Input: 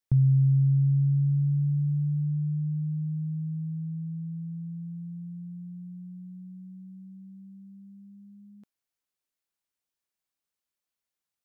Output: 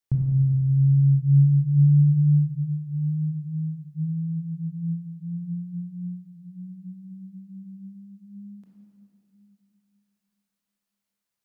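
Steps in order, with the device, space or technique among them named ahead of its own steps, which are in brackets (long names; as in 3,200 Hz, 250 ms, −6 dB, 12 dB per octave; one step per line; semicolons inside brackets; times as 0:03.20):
stairwell (convolution reverb RT60 2.7 s, pre-delay 20 ms, DRR −1.5 dB)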